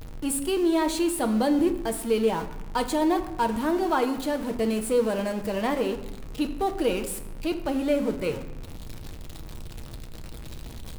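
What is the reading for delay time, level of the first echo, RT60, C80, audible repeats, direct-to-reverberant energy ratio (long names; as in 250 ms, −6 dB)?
no echo audible, no echo audible, 0.95 s, 13.0 dB, no echo audible, 6.0 dB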